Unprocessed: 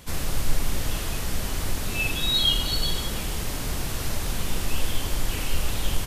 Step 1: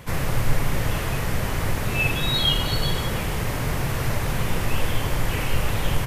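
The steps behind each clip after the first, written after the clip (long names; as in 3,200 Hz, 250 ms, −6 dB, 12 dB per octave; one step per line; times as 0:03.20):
octave-band graphic EQ 125/500/1,000/2,000/4,000/8,000 Hz +11/+6/+5/+7/−3/−3 dB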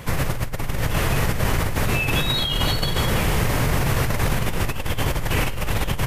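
compressor whose output falls as the input rises −24 dBFS, ratio −1
level +3 dB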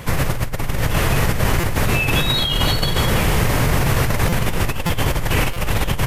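buffer that repeats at 0:01.60/0:04.29/0:04.86/0:05.53, samples 256, times 5
level +3.5 dB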